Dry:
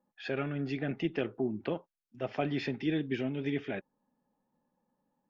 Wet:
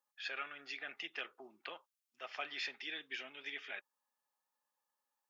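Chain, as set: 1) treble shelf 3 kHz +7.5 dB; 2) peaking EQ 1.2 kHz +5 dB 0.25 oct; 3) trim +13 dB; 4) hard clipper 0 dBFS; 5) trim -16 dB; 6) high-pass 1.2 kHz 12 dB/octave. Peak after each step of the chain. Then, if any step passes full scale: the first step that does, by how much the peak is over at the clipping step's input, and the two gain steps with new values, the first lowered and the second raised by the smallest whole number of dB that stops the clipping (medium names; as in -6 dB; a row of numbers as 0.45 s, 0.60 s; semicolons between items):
-18.0 dBFS, -17.5 dBFS, -4.5 dBFS, -4.5 dBFS, -20.5 dBFS, -26.0 dBFS; nothing clips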